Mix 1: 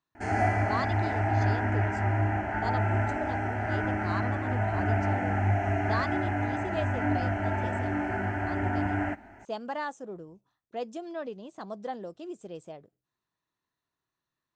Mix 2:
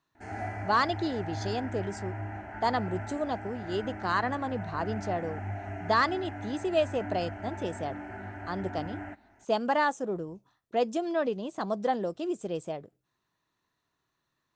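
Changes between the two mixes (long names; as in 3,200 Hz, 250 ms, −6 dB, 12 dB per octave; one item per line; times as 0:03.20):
speech +8.0 dB
background −10.5 dB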